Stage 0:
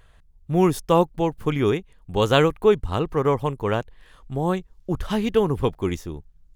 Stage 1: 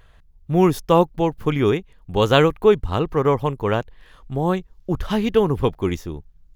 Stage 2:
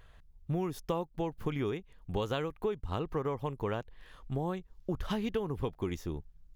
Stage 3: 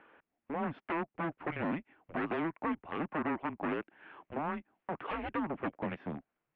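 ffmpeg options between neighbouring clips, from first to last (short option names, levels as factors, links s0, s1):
-af "equalizer=f=8700:t=o:w=0.54:g=-7,volume=1.33"
-af "acompressor=threshold=0.0631:ratio=10,volume=0.531"
-af "aeval=exprs='0.0266*(abs(mod(val(0)/0.0266+3,4)-2)-1)':c=same,highpass=f=360:t=q:w=0.5412,highpass=f=360:t=q:w=1.307,lowpass=f=2700:t=q:w=0.5176,lowpass=f=2700:t=q:w=0.7071,lowpass=f=2700:t=q:w=1.932,afreqshift=-160,volume=1.88"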